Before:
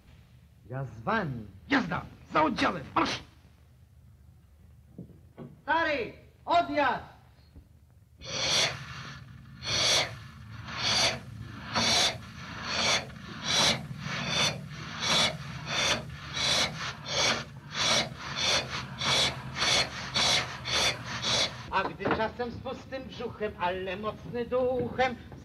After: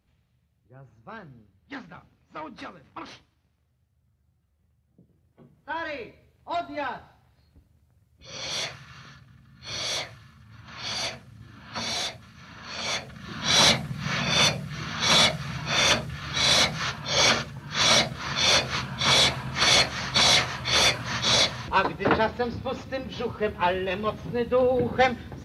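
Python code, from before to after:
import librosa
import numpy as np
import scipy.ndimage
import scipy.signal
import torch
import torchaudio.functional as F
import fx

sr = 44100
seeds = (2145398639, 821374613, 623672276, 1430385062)

y = fx.gain(x, sr, db=fx.line((5.02, -13.0), (5.79, -5.0), (12.81, -5.0), (13.43, 6.0)))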